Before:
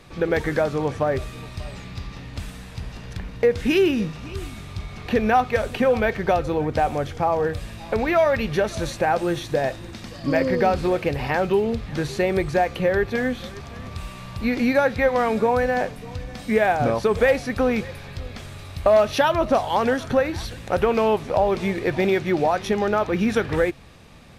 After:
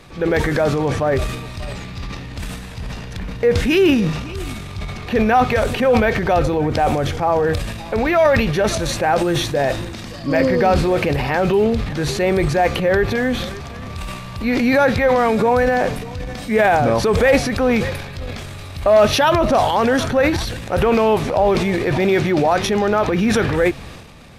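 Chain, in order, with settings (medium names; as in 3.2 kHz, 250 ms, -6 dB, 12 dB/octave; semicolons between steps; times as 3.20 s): transient shaper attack -4 dB, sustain +8 dB; trim +4.5 dB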